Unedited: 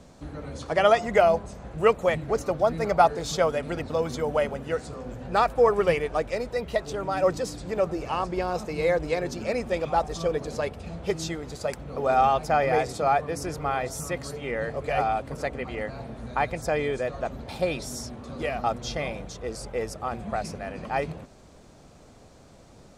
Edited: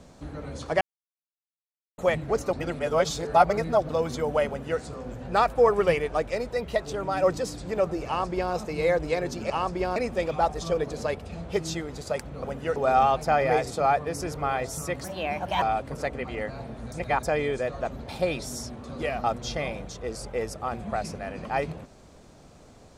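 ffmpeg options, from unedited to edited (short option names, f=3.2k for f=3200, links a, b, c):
-filter_complex "[0:a]asplit=13[a][b][c][d][e][f][g][h][i][j][k][l][m];[a]atrim=end=0.81,asetpts=PTS-STARTPTS,afade=t=out:st=0.806:d=0.004:c=hsin[n];[b]atrim=start=0.81:end=1.98,asetpts=PTS-STARTPTS,volume=0[o];[c]atrim=start=1.98:end=2.532,asetpts=PTS-STARTPTS,afade=t=in:d=0.004:c=hsin[p];[d]atrim=start=2.528:end=3.892,asetpts=PTS-STARTPTS,areverse[q];[e]atrim=start=3.888:end=9.502[r];[f]atrim=start=8.068:end=8.532[s];[g]atrim=start=9.498:end=11.982[t];[h]atrim=start=4.478:end=4.802[u];[i]atrim=start=11.978:end=14.264[v];[j]atrim=start=14.26:end=15.02,asetpts=PTS-STARTPTS,asetrate=57771,aresample=44100[w];[k]atrim=start=15.016:end=16.322[x];[l]atrim=start=16.318:end=16.632,asetpts=PTS-STARTPTS,areverse[y];[m]atrim=start=16.628[z];[n][o][p]concat=n=3:v=0:a=1[aa];[aa][q]acrossfade=d=0.004:c1=hsin:c2=hsin[ab];[ab][r]acrossfade=d=0.004:c1=hsin:c2=hsin[ac];[ac][s]acrossfade=d=0.004:c1=hsin:c2=hsin[ad];[ad][t]acrossfade=d=0.004:c1=hsin:c2=hsin[ae];[ae][u]acrossfade=d=0.004:c1=hsin:c2=hsin[af];[af][v]acrossfade=d=0.004:c1=hsin:c2=hsin[ag];[ag][w]acrossfade=d=0.004:c1=hsin:c2=hsin[ah];[ah][x]acrossfade=d=0.004:c1=hsin:c2=hsin[ai];[ai][y]acrossfade=d=0.004:c1=hsin:c2=hsin[aj];[aj][z]acrossfade=d=0.004:c1=hsin:c2=hsin"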